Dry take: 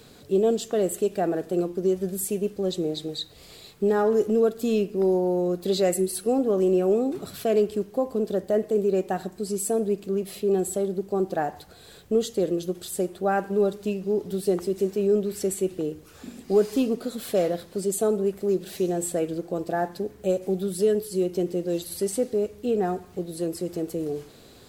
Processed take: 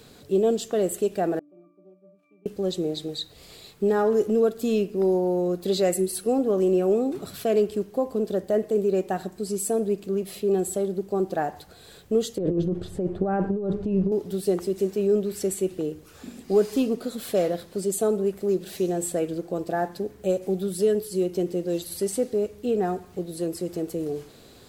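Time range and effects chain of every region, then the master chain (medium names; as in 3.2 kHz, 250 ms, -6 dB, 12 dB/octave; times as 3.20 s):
1.39–2.46 s: self-modulated delay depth 0.13 ms + Chebyshev high-pass 180 Hz, order 6 + pitch-class resonator D, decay 0.75 s
12.38–14.12 s: low-pass 2.4 kHz 6 dB/octave + tilt EQ -3.5 dB/octave + compressor with a negative ratio -24 dBFS
whole clip: none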